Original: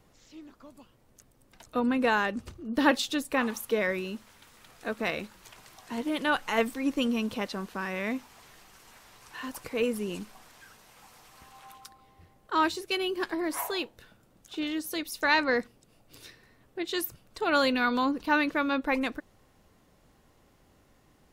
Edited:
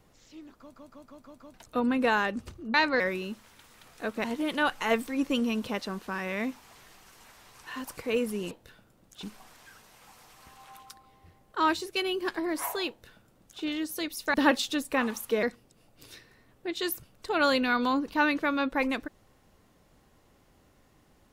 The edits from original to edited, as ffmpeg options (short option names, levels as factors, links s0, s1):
-filter_complex "[0:a]asplit=14[s0][s1][s2][s3][s4][s5][s6][s7][s8][s9][s10][s11][s12][s13];[s0]atrim=end=0.742[s14];[s1]atrim=start=0.578:end=0.742[s15];[s2]atrim=start=0.578:end=0.742[s16];[s3]atrim=start=0.578:end=0.742[s17];[s4]atrim=start=0.578:end=0.742[s18];[s5]atrim=start=0.578:end=0.742[s19];[s6]atrim=start=1.538:end=2.742[s20];[s7]atrim=start=15.288:end=15.552[s21];[s8]atrim=start=3.828:end=5.072[s22];[s9]atrim=start=5.908:end=10.182[s23];[s10]atrim=start=13.838:end=14.562[s24];[s11]atrim=start=10.178:end=15.292[s25];[s12]atrim=start=2.738:end=3.832[s26];[s13]atrim=start=15.548[s27];[s14][s15]acrossfade=d=0.004:c1=hsin:c2=hsin[s28];[s28][s16]acrossfade=d=0.004:c1=hsin:c2=hsin[s29];[s29][s17]acrossfade=d=0.004:c1=hsin:c2=hsin[s30];[s30][s18]acrossfade=d=0.004:c1=hsin:c2=hsin[s31];[s31][s19]acrossfade=d=0.004:c1=hsin:c2=hsin[s32];[s32][s20]acrossfade=d=0.004:c1=hsin:c2=hsin[s33];[s33][s21]acrossfade=d=0.004:c1=hsin:c2=hsin[s34];[s34][s22]acrossfade=d=0.004:c1=hsin:c2=hsin[s35];[s35][s23]acrossfade=d=0.004:c1=hsin:c2=hsin[s36];[s36][s24]acrossfade=d=0.004:c1=hsin:c2=hsin[s37];[s37][s25]acrossfade=d=0.004:c1=hsin:c2=hsin[s38];[s38][s26]acrossfade=d=0.004:c1=hsin:c2=hsin[s39];[s39][s27]acrossfade=d=0.004:c1=hsin:c2=hsin"